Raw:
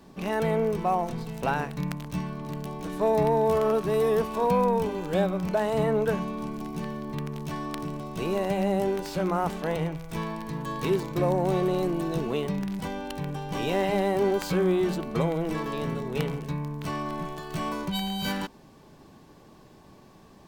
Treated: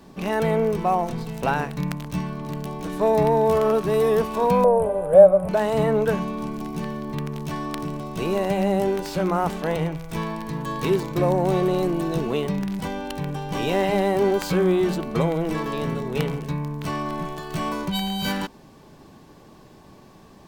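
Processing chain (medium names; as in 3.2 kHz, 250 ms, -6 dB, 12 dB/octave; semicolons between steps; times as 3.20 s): 4.64–5.49 s: FFT filter 130 Hz 0 dB, 320 Hz -13 dB, 600 Hz +15 dB, 850 Hz -1 dB, 1.5 kHz -5 dB, 5.9 kHz -28 dB, 9.7 kHz +9 dB, 16 kHz -20 dB; trim +4 dB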